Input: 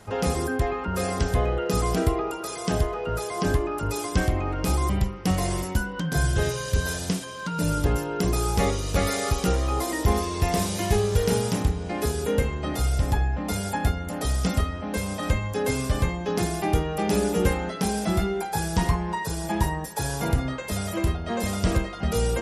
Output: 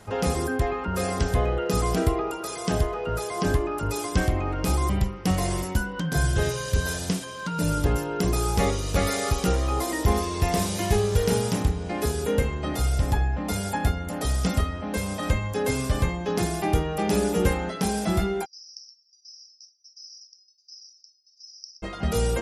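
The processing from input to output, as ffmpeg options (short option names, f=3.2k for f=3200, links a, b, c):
-filter_complex "[0:a]asplit=3[a][b][c];[a]afade=t=out:st=18.44:d=0.02[d];[b]asuperpass=centerf=5300:order=8:qfactor=5.5,afade=t=in:st=18.44:d=0.02,afade=t=out:st=21.82:d=0.02[e];[c]afade=t=in:st=21.82:d=0.02[f];[d][e][f]amix=inputs=3:normalize=0"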